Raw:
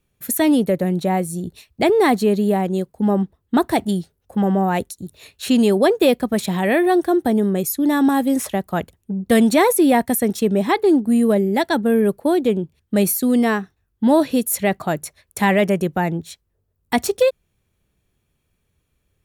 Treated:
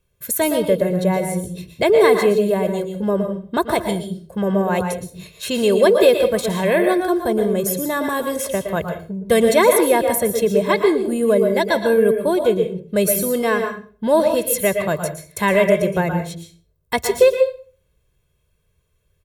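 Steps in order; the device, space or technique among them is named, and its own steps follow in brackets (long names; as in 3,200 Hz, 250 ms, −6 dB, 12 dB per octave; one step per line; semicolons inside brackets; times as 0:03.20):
microphone above a desk (comb filter 1.9 ms, depth 69%; convolution reverb RT60 0.40 s, pre-delay 110 ms, DRR 5 dB)
level −1 dB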